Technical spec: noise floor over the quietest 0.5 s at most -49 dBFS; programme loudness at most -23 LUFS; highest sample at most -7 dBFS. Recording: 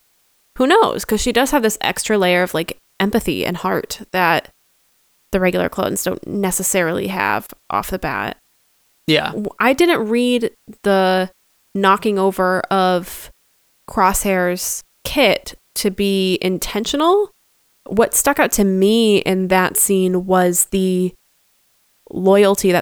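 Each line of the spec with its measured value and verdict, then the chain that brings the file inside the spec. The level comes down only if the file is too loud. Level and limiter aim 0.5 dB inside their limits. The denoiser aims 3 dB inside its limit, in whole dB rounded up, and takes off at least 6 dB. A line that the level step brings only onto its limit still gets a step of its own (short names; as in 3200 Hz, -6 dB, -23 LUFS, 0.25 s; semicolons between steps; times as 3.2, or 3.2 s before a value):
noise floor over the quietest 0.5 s -60 dBFS: OK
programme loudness -17.0 LUFS: fail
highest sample -2.0 dBFS: fail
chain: gain -6.5 dB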